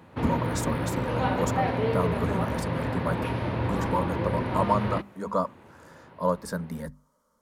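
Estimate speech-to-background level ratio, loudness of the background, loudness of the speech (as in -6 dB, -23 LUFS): -2.5 dB, -29.0 LUFS, -31.5 LUFS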